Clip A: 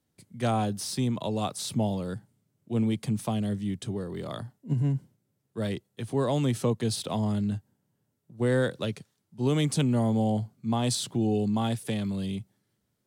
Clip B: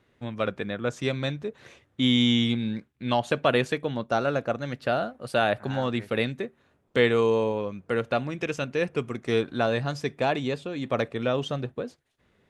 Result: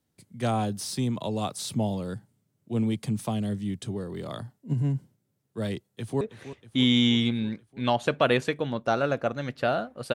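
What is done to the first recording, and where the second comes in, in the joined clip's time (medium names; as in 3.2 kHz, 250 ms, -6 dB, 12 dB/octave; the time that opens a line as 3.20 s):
clip A
5.93–6.21 s: echo throw 320 ms, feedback 70%, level -13.5 dB
6.21 s: go over to clip B from 1.45 s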